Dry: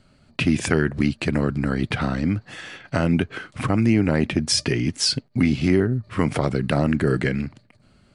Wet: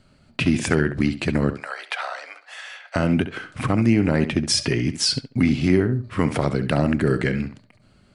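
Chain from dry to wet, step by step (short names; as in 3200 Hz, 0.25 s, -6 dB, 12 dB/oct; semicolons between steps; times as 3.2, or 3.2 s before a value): 1.53–2.96 steep high-pass 590 Hz 36 dB/oct; tape echo 68 ms, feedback 20%, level -10 dB, low-pass 4100 Hz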